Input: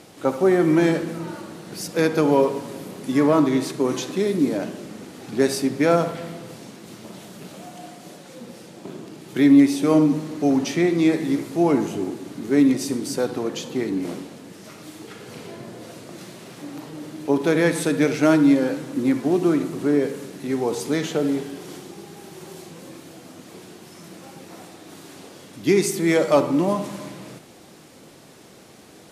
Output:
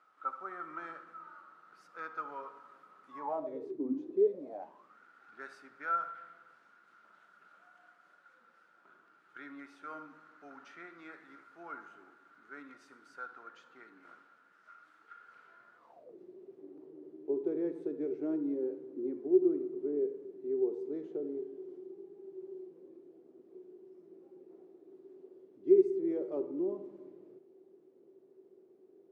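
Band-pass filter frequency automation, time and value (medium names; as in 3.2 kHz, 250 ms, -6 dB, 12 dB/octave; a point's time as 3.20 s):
band-pass filter, Q 16
3.06 s 1.3 kHz
3.92 s 260 Hz
4.98 s 1.4 kHz
15.76 s 1.4 kHz
16.17 s 380 Hz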